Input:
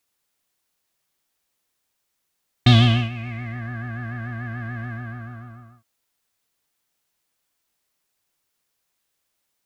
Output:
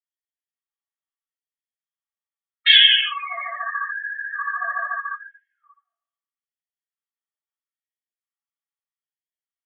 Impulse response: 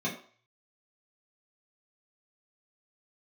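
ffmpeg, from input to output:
-filter_complex "[1:a]atrim=start_sample=2205,asetrate=22932,aresample=44100[a];[0:a][a]afir=irnorm=-1:irlink=0,afftdn=nr=34:nf=-22,afftfilt=real='re*gte(b*sr/1024,570*pow(1600/570,0.5+0.5*sin(2*PI*0.78*pts/sr)))':imag='im*gte(b*sr/1024,570*pow(1600/570,0.5+0.5*sin(2*PI*0.78*pts/sr)))':win_size=1024:overlap=0.75,volume=4.5dB"

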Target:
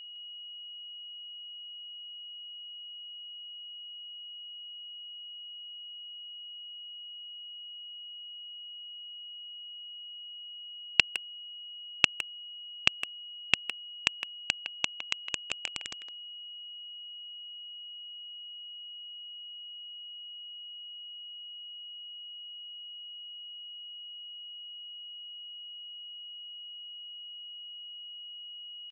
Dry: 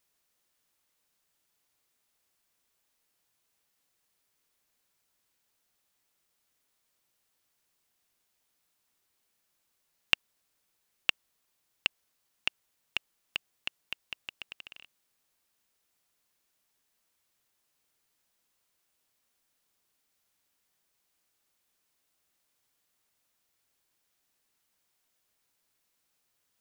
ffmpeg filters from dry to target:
-filter_complex "[0:a]equalizer=f=140:t=o:w=0.26:g=10.5,atempo=0.92,acontrast=78,aresample=16000,acrusher=bits=3:mix=0:aa=0.000001,aresample=44100,aeval=exprs='val(0)+0.00708*sin(2*PI*2900*n/s)':c=same,asplit=2[a][b];[b]adelay=160,highpass=300,lowpass=3.4k,asoftclip=type=hard:threshold=-9.5dB,volume=-9dB[c];[a][c]amix=inputs=2:normalize=0"

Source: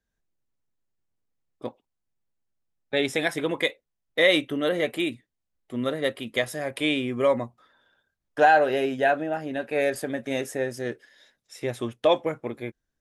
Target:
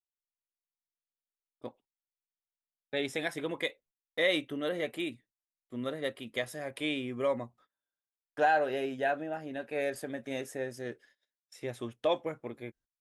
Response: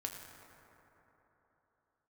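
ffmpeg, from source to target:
-af "agate=range=-24dB:threshold=-52dB:ratio=16:detection=peak,volume=-8.5dB"

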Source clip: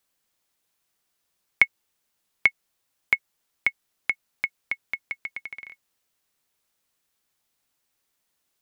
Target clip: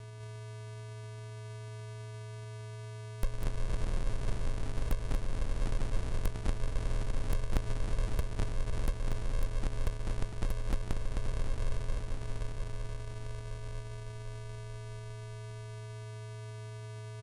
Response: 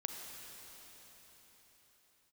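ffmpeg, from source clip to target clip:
-filter_complex "[0:a]equalizer=f=2.2k:w=7.2:g=7,alimiter=limit=-4dB:level=0:latency=1,asplit=2[a][b];[1:a]atrim=start_sample=2205,highshelf=f=4.7k:g=-6[c];[b][c]afir=irnorm=-1:irlink=0,volume=2dB[d];[a][d]amix=inputs=2:normalize=0,asoftclip=type=tanh:threshold=-10.5dB,acompressor=threshold=-31dB:ratio=12,aeval=exprs='val(0)+0.00355*sin(2*PI*1300*n/s)':c=same,asplit=2[e][f];[f]aecho=0:1:100|104|114|119|724:0.251|0.316|0.251|0.282|0.15[g];[e][g]amix=inputs=2:normalize=0,acrusher=samples=41:mix=1:aa=0.000001,asetrate=22050,aresample=44100,aeval=exprs='0.0531*(abs(mod(val(0)/0.0531+3,4)-2)-1)':c=same,volume=5.5dB"

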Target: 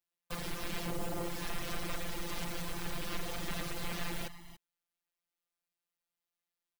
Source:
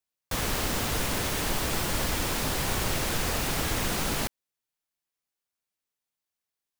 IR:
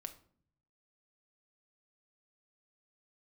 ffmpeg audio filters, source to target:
-filter_complex "[0:a]asplit=3[a][b][c];[a]afade=t=out:st=0.85:d=0.02[d];[b]lowshelf=f=590:t=q:w=3:g=6.5,afade=t=in:st=0.85:d=0.02,afade=t=out:st=1.28:d=0.02[e];[c]afade=t=in:st=1.28:d=0.02[f];[d][e][f]amix=inputs=3:normalize=0,acrossover=split=5600[g][h];[g]alimiter=limit=-21dB:level=0:latency=1:release=265[i];[h]aeval=exprs='val(0)*sin(2*PI*540*n/s)':c=same[j];[i][j]amix=inputs=2:normalize=0,afftfilt=real='hypot(re,im)*cos(PI*b)':imag='0':win_size=1024:overlap=0.75,aeval=exprs='0.0335*(abs(mod(val(0)/0.0335+3,4)-2)-1)':c=same,asplit=2[k][l];[l]aecho=0:1:286|287:0.15|0.112[m];[k][m]amix=inputs=2:normalize=0,volume=1dB"

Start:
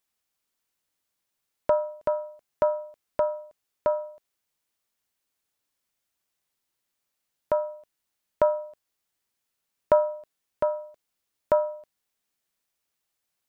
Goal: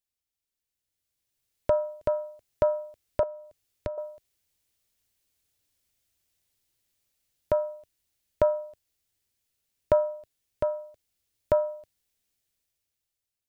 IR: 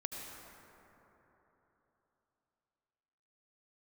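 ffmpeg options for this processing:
-filter_complex "[0:a]lowshelf=f=130:t=q:w=1.5:g=6.5,asettb=1/sr,asplit=3[a][b][c];[a]atrim=end=3.234[d];[b]atrim=start=3.23:end=3.98,asetpts=PTS-STARTPTS,afade=t=in:d=0.004:c=qsin,afade=t=out:st=0.746:d=0.004:c=qsin,acrossover=split=360[e][f];[f]acompressor=threshold=-39dB:ratio=4[g];[e][g]amix=inputs=2:normalize=0[h];[c]atrim=start=3.976[i];[d][h]acrossfade=d=0.004:c1=hsin:c2=qsin[j];[j][i]acrossfade=d=0.004:c1=qsin:c2=hsin,equalizer=f=1.1k:t=o:w=1.5:g=-9,dynaudnorm=f=350:g=7:m=13.5dB,volume=-8dB"

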